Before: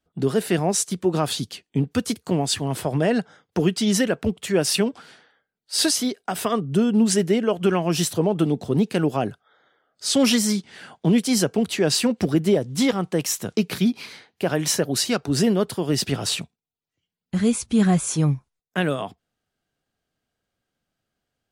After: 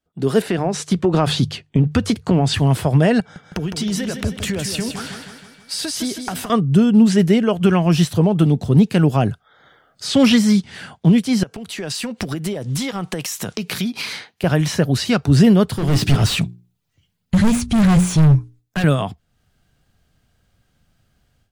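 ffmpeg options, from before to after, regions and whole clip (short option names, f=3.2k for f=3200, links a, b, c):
-filter_complex "[0:a]asettb=1/sr,asplit=3[a][b][c];[a]atrim=end=0.424[d];[b]atrim=start=0.42:end=2.54,asetpts=PTS-STARTPTS,afade=t=in:d=0.004:c=qsin,afade=t=out:st=2.116:d=0.004:c=qsin,aemphasis=mode=reproduction:type=50fm,bandreject=f=50:t=h:w=6,bandreject=f=100:t=h:w=6,bandreject=f=150:t=h:w=6,acompressor=threshold=-21dB:ratio=5:attack=3.2:release=140:knee=1:detection=peak[e];[c]atrim=start=2.536[f];[d][e]acrossfade=d=0.004:c1=hsin:c2=qsin[g];[g][f]acrossfade=d=0.004:c1=qsin:c2=hsin,asettb=1/sr,asplit=3[h][i][j];[h]atrim=end=3.204[k];[i]atrim=start=3.2:end=6.5,asetpts=PTS-STARTPTS,afade=t=in:d=0.004:c=qsin,afade=t=out:st=3.296:d=0.004:c=qsin,acompressor=threshold=-33dB:ratio=20:attack=3.2:release=140:knee=1:detection=peak,aeval=exprs='val(0)+0.000501*sin(2*PI*2300*n/s)':c=same,aecho=1:1:159|318|477|636|795|954:0.398|0.215|0.116|0.0627|0.0339|0.0183,atrim=end_sample=145530[l];[j]atrim=start=6.496[m];[k][l]acrossfade=d=0.004:c1=hsin:c2=qsin[n];[n][m]acrossfade=d=0.004:c1=qsin:c2=hsin,asettb=1/sr,asplit=3[o][p][q];[o]atrim=end=11.434[r];[p]atrim=start=11.43:end=14.44,asetpts=PTS-STARTPTS,afade=t=in:d=0.004:c=qsin,afade=t=out:st=3.006:d=0.004:c=qsin,highpass=f=420:p=1,acompressor=threshold=-34dB:ratio=8:attack=3.2:release=140:knee=1:detection=peak[s];[q]atrim=start=14.436[t];[r][s]acrossfade=d=0.004:c1=hsin:c2=qsin[u];[u][t]acrossfade=d=0.004:c1=qsin:c2=hsin,asettb=1/sr,asplit=3[v][w][x];[v]atrim=end=15.684[y];[w]atrim=start=15.68:end=18.84,asetpts=PTS-STARTPTS,afade=t=in:d=0.004:c=qsin,afade=t=out:st=3.156:d=0.004:c=qsin,bandreject=f=60:t=h:w=6,bandreject=f=120:t=h:w=6,bandreject=f=180:t=h:w=6,bandreject=f=240:t=h:w=6,bandreject=f=300:t=h:w=6,bandreject=f=360:t=h:w=6,bandreject=f=420:t=h:w=6,volume=25dB,asoftclip=hard,volume=-25dB[z];[x]atrim=start=18.836[aa];[y][z]acrossfade=d=0.004:c1=hsin:c2=qsin[ab];[ab][aa]acrossfade=d=0.004:c1=qsin:c2=hsin,acrossover=split=4000[ac][ad];[ad]acompressor=threshold=-36dB:ratio=4:attack=1:release=60[ae];[ac][ae]amix=inputs=2:normalize=0,asubboost=boost=4:cutoff=160,dynaudnorm=f=180:g=3:m=16dB,volume=-2.5dB"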